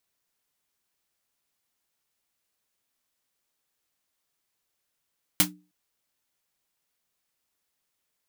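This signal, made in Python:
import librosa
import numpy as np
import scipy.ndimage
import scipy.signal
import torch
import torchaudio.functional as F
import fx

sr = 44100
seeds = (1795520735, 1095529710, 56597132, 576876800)

y = fx.drum_snare(sr, seeds[0], length_s=0.31, hz=180.0, second_hz=300.0, noise_db=12.0, noise_from_hz=640.0, decay_s=0.35, noise_decay_s=0.13)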